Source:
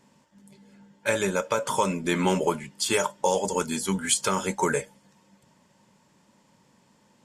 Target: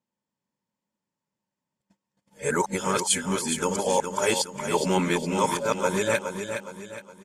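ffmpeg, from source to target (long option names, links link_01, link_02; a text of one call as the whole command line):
ffmpeg -i in.wav -af "areverse,agate=range=-26dB:threshold=-55dB:ratio=16:detection=peak,aecho=1:1:415|830|1245|1660|2075:0.422|0.169|0.0675|0.027|0.0108" out.wav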